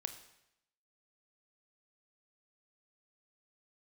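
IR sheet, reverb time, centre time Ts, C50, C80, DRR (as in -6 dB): 0.80 s, 12 ms, 11.0 dB, 13.0 dB, 8.0 dB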